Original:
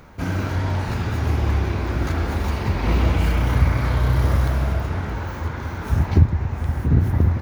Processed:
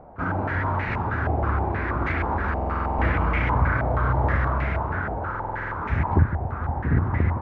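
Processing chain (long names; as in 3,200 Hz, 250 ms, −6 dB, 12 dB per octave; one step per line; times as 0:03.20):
low-shelf EQ 250 Hz −4 dB
buffer that repeats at 0:02.52/0:05.30, samples 2,048, times 9
low-pass on a step sequencer 6.3 Hz 720–2,100 Hz
level −1.5 dB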